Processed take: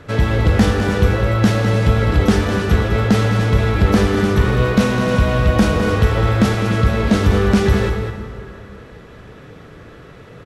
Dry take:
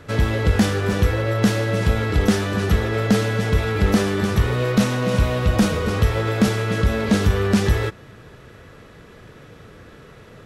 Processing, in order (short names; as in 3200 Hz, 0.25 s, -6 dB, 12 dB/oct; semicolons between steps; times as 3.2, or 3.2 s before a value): high shelf 5600 Hz -7 dB; on a send: echo 0.206 s -9 dB; on the sum: plate-style reverb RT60 2.9 s, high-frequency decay 0.6×, DRR 7.5 dB; gain +3 dB